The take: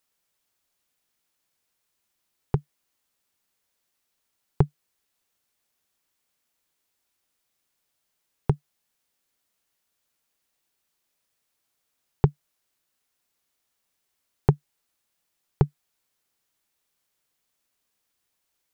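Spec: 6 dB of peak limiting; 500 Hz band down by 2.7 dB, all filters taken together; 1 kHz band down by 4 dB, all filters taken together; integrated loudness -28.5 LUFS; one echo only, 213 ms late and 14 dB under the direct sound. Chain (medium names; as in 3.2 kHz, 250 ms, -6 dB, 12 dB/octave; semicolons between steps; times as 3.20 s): peaking EQ 500 Hz -3 dB; peaking EQ 1 kHz -4 dB; peak limiter -12 dBFS; delay 213 ms -14 dB; trim +5.5 dB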